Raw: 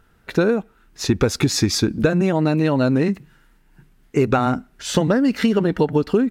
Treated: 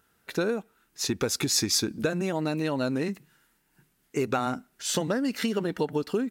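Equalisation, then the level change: HPF 200 Hz 6 dB/oct; high shelf 5000 Hz +12 dB; -8.5 dB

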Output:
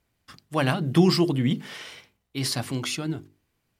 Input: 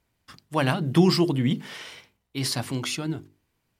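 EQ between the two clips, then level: notch 940 Hz, Q 19; 0.0 dB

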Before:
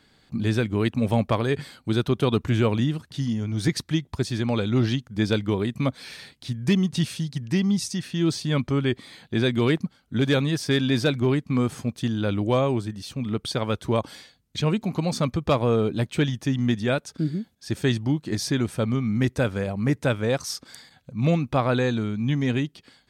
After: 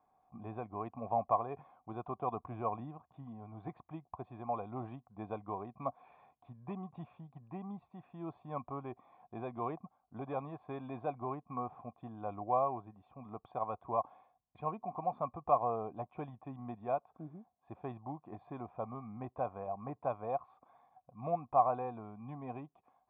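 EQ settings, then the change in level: vocal tract filter a; +4.5 dB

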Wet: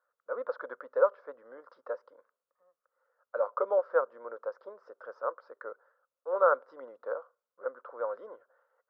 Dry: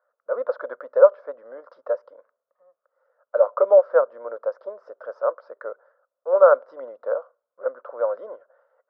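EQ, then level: bell 620 Hz -11 dB 0.52 oct; -4.0 dB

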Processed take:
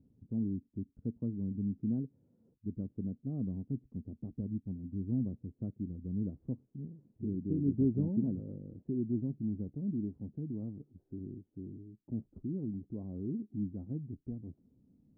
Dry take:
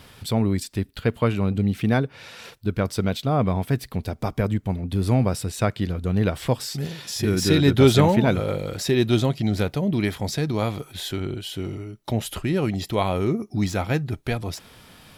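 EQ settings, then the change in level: ladder low-pass 300 Hz, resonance 50%; tilt +3 dB/oct; low shelf 130 Hz +6.5 dB; -2.5 dB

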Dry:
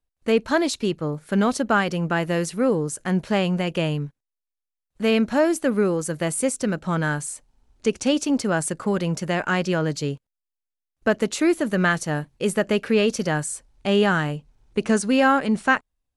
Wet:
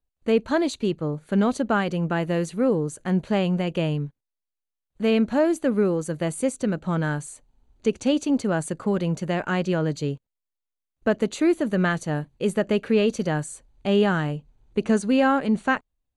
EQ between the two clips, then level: Butterworth band-stop 5300 Hz, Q 6.4; bell 1600 Hz -4.5 dB 2 oct; high shelf 6800 Hz -12 dB; 0.0 dB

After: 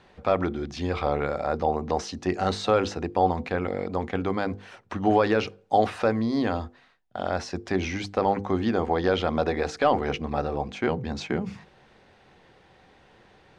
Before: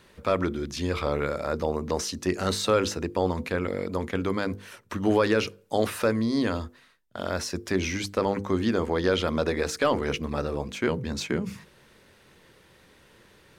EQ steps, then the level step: air absorption 110 m; bell 760 Hz +13.5 dB 0.27 oct; 0.0 dB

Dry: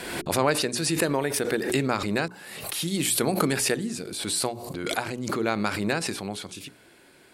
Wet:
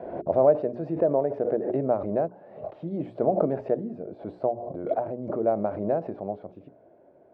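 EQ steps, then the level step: HPF 46 Hz; synth low-pass 630 Hz, resonance Q 6; air absorption 97 m; -4.5 dB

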